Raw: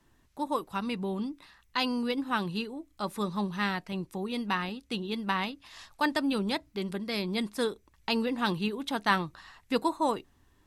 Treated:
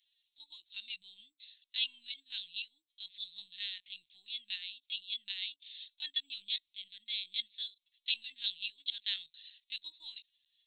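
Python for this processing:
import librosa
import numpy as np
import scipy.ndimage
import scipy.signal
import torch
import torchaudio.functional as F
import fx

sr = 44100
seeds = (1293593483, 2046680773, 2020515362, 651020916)

y = fx.lpc_vocoder(x, sr, seeds[0], excitation='pitch_kept', order=16)
y = scipy.signal.sosfilt(scipy.signal.cheby2(4, 60, 1300.0, 'highpass', fs=sr, output='sos'), y)
y = y * librosa.db_to_amplitude(15.5)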